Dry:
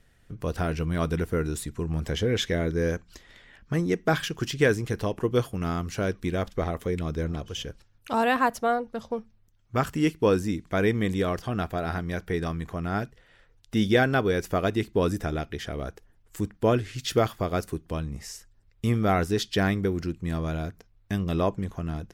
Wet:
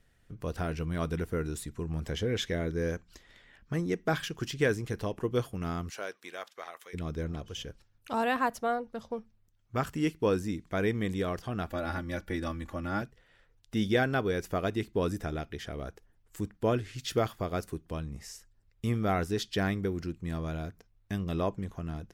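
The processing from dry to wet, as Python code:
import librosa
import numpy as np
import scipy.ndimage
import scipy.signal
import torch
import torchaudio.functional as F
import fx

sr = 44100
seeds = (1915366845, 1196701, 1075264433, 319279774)

y = fx.highpass(x, sr, hz=fx.line((5.89, 540.0), (6.93, 1300.0)), slope=12, at=(5.89, 6.93), fade=0.02)
y = fx.comb(y, sr, ms=3.5, depth=0.87, at=(11.67, 13.02))
y = y * librosa.db_to_amplitude(-5.5)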